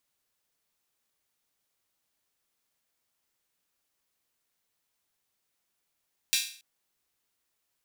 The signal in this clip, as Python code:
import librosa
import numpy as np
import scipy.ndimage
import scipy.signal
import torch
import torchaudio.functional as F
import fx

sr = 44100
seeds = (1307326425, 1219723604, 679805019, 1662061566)

y = fx.drum_hat_open(sr, length_s=0.28, from_hz=3000.0, decay_s=0.46)